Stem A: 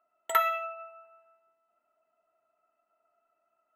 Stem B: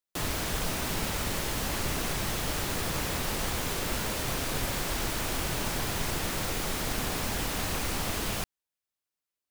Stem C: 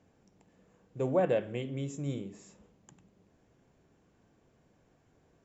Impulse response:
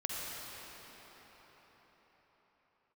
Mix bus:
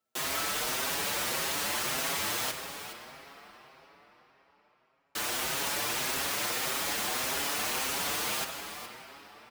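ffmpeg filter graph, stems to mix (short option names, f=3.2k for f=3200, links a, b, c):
-filter_complex "[0:a]volume=-10dB[a];[1:a]volume=1.5dB,asplit=3[b][c][d];[b]atrim=end=2.51,asetpts=PTS-STARTPTS,afade=t=out:st=2.506:d=0.004:c=hsin[e];[c]atrim=start=2.51:end=5.15,asetpts=PTS-STARTPTS,volume=0[f];[d]atrim=start=5.15,asetpts=PTS-STARTPTS,afade=t=in:d=0.004:c=hsin[g];[e][f][g]concat=n=3:v=0:a=1,asplit=3[h][i][j];[i]volume=-5.5dB[k];[j]volume=-9dB[l];[2:a]volume=-13dB[m];[3:a]atrim=start_sample=2205[n];[k][n]afir=irnorm=-1:irlink=0[o];[l]aecho=0:1:416:1[p];[a][h][m][o][p]amix=inputs=5:normalize=0,highpass=f=750:p=1,asplit=2[q][r];[r]adelay=6.3,afreqshift=1.7[s];[q][s]amix=inputs=2:normalize=1"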